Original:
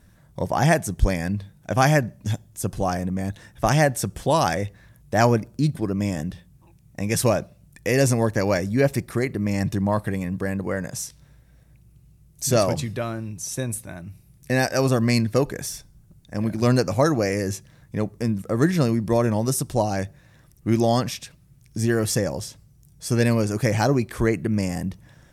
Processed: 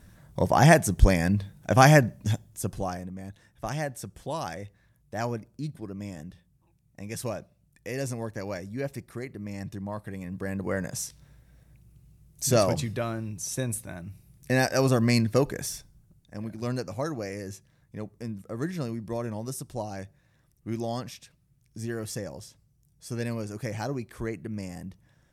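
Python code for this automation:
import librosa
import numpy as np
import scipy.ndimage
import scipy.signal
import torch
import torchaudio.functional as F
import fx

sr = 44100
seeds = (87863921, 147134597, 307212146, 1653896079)

y = fx.gain(x, sr, db=fx.line((2.01, 1.5), (2.76, -5.5), (3.13, -13.0), (10.02, -13.0), (10.75, -2.5), (15.72, -2.5), (16.5, -12.0)))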